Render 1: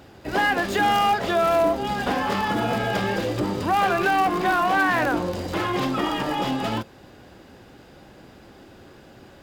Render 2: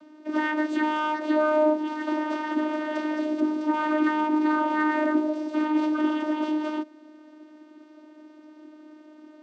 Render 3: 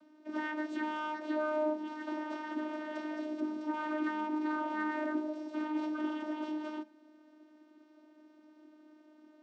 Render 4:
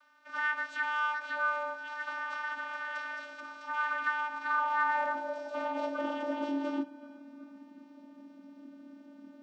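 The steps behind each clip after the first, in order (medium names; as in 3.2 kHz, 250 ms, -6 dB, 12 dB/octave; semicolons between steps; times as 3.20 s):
vocoder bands 16, saw 306 Hz; trim -1.5 dB
feedback comb 220 Hz, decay 0.36 s, harmonics all, mix 70%; trim -1.5 dB
band-passed feedback delay 368 ms, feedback 62%, band-pass 1.2 kHz, level -16.5 dB; frequency shift -27 Hz; high-pass sweep 1.3 kHz -> 190 Hz, 4.35–7.73 s; trim +4 dB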